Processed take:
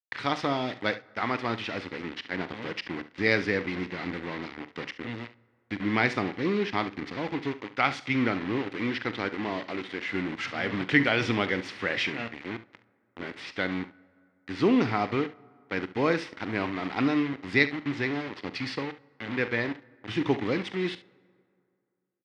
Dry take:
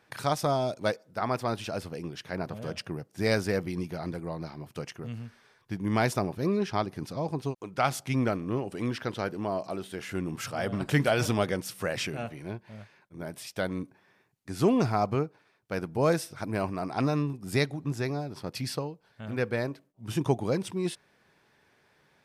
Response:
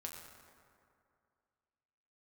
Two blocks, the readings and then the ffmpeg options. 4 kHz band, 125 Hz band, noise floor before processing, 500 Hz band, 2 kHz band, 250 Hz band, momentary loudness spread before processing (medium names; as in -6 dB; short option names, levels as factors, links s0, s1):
+3.5 dB, -5.0 dB, -67 dBFS, -1.0 dB, +7.5 dB, +2.0 dB, 13 LU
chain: -filter_complex "[0:a]aemphasis=mode=production:type=75fm,acrusher=bits=5:mix=0:aa=0.000001,highpass=110,equalizer=f=150:t=q:w=4:g=-7,equalizer=f=290:t=q:w=4:g=6,equalizer=f=630:t=q:w=4:g=-7,equalizer=f=2000:t=q:w=4:g=9,lowpass=f=3700:w=0.5412,lowpass=f=3700:w=1.3066,aecho=1:1:43|70:0.158|0.168,asplit=2[s0][s1];[1:a]atrim=start_sample=2205[s2];[s1][s2]afir=irnorm=-1:irlink=0,volume=0.15[s3];[s0][s3]amix=inputs=2:normalize=0"